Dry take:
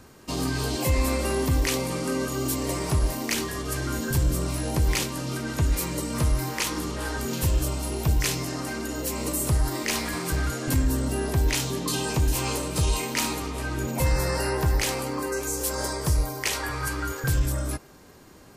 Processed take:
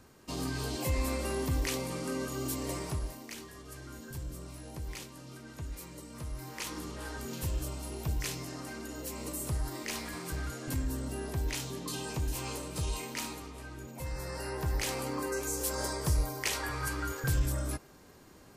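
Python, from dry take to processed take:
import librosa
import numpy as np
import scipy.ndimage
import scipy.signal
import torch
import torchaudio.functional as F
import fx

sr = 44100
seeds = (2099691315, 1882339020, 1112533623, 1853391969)

y = fx.gain(x, sr, db=fx.line((2.77, -8.0), (3.27, -17.5), (6.26, -17.5), (6.7, -10.5), (13.09, -10.5), (13.94, -17.0), (15.07, -5.5)))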